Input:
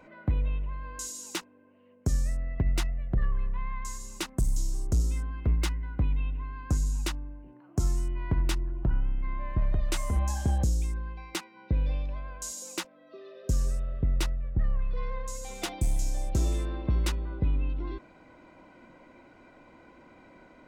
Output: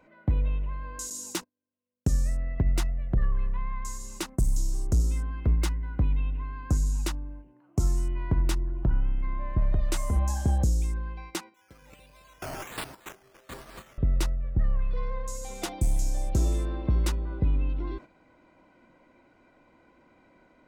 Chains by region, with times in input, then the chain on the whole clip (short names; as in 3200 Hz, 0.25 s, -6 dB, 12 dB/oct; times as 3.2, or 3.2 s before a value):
1.1–2.07 gate -47 dBFS, range -27 dB + tone controls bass +5 dB, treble +3 dB
11.54–13.98 regenerating reverse delay 0.141 s, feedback 58%, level -3 dB + HPF 1500 Hz 6 dB/oct + decimation with a swept rate 9×, swing 60% 1.3 Hz
whole clip: gate -44 dBFS, range -8 dB; dynamic EQ 2700 Hz, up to -5 dB, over -50 dBFS, Q 0.7; gain +2 dB